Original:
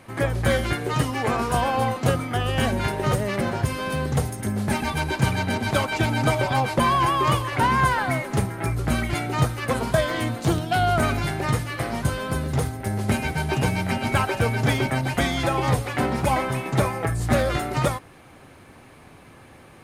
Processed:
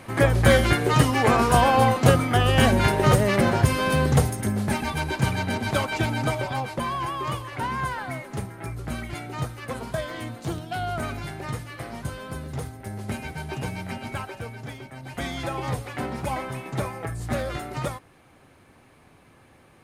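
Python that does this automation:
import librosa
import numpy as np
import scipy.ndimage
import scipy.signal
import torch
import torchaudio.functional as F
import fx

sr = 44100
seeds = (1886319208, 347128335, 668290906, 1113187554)

y = fx.gain(x, sr, db=fx.line((4.12, 4.5), (4.79, -2.0), (5.99, -2.0), (6.85, -8.5), (13.95, -8.5), (14.91, -18.5), (15.27, -7.0)))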